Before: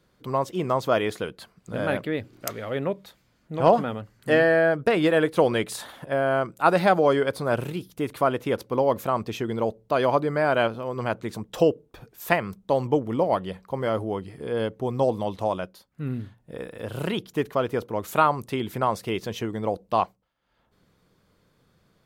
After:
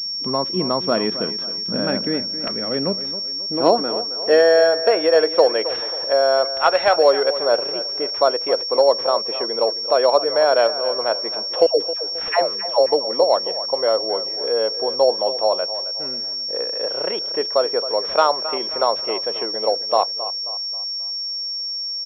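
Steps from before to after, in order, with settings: 6.45–6.97 s: tilt EQ +4.5 dB/octave; in parallel at -0.5 dB: compression, threshold -33 dBFS, peak gain reduction 19.5 dB; 11.66–12.86 s: on the sum: phase dispersion lows, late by 124 ms, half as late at 670 Hz; on a send: feedback delay 268 ms, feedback 41%, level -13.5 dB; on the sum: high-pass sweep 210 Hz -> 530 Hz, 3.05–4.62 s; class-D stage that switches slowly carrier 5.5 kHz; trim -1 dB

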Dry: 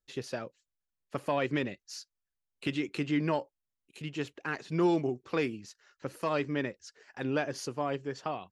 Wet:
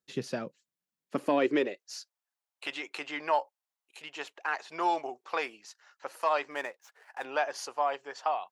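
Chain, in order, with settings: 6.51–7.25 s: median filter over 9 samples; high-pass sweep 170 Hz -> 790 Hz, 0.89–2.20 s; trim +1 dB

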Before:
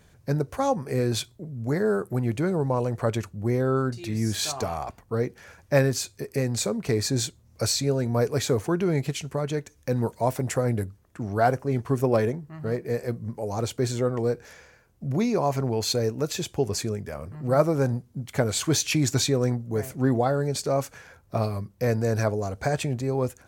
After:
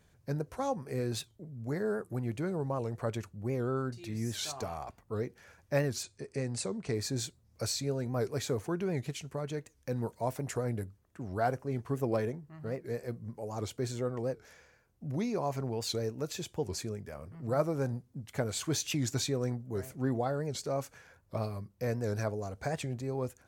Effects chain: 6.03–6.94 s: steep low-pass 10 kHz 96 dB/octave; warped record 78 rpm, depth 160 cents; trim -9 dB

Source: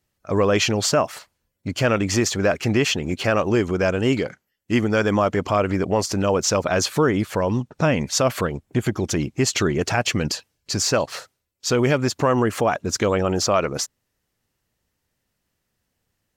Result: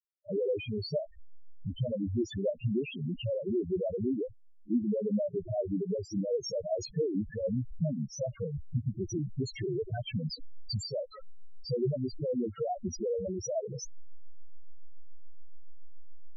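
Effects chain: send-on-delta sampling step -29.5 dBFS; compression 5:1, threshold -25 dBFS, peak gain reduction 10.5 dB; reverse echo 34 ms -20 dB; rotary cabinet horn 8 Hz; loudest bins only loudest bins 2; trim +4 dB

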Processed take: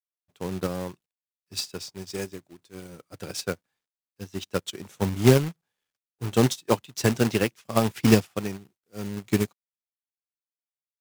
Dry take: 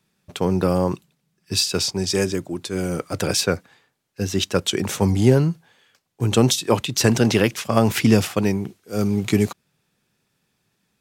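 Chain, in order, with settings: companded quantiser 4-bit; upward expansion 2.5:1, over -30 dBFS

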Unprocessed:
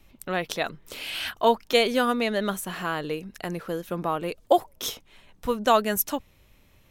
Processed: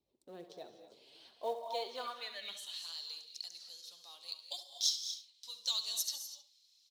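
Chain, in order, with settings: FFT filter 100 Hz 0 dB, 300 Hz -14 dB, 450 Hz -10 dB, 990 Hz -14 dB, 1.4 kHz -24 dB, 2.6 kHz -19 dB, 4.1 kHz -3 dB, 8.7 kHz -12 dB, 15 kHz -20 dB; gated-style reverb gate 270 ms rising, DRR 8 dB; flange 0.59 Hz, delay 0.7 ms, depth 9.5 ms, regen +29%; on a send: feedback delay 69 ms, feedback 15%, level -12.5 dB; on the sum: band-pass sweep 370 Hz -> 4.7 kHz, 1.29–2.95 s; tilt EQ +4 dB/octave; in parallel at -3 dB: short-mantissa float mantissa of 2-bit; on the sum: trim +2 dB

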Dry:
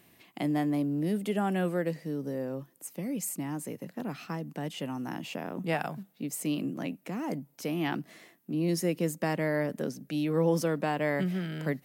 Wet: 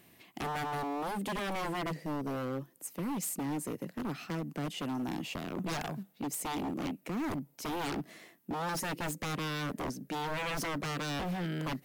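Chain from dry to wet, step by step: dynamic bell 350 Hz, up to +4 dB, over -45 dBFS, Q 1.9; wavefolder -30 dBFS

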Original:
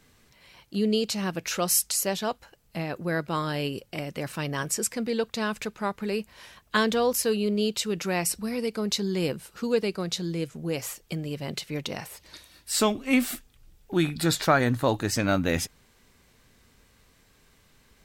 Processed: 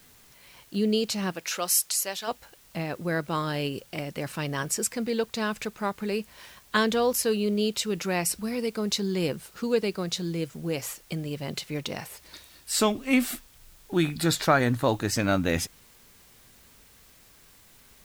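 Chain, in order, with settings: 1.31–2.27 s: high-pass 480 Hz -> 1.3 kHz 6 dB/octave; in parallel at -5 dB: word length cut 8-bit, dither triangular; on the sum: trim -4 dB

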